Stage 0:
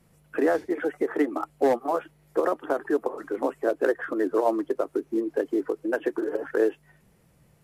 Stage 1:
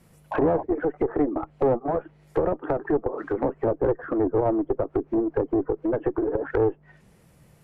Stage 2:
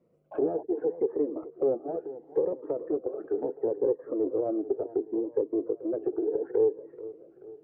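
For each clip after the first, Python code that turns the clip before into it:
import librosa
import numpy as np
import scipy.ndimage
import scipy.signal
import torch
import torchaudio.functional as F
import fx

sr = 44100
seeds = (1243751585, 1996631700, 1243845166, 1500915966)

y1 = fx.spec_paint(x, sr, seeds[0], shape='noise', start_s=0.31, length_s=0.32, low_hz=540.0, high_hz=1100.0, level_db=-33.0)
y1 = fx.clip_asym(y1, sr, top_db=-28.0, bottom_db=-15.5)
y1 = fx.env_lowpass_down(y1, sr, base_hz=740.0, full_db=-26.0)
y1 = F.gain(torch.from_numpy(y1), 5.0).numpy()
y2 = fx.bandpass_q(y1, sr, hz=440.0, q=2.7)
y2 = fx.echo_feedback(y2, sr, ms=434, feedback_pct=50, wet_db=-15.5)
y2 = fx.notch_cascade(y2, sr, direction='rising', hz=0.71)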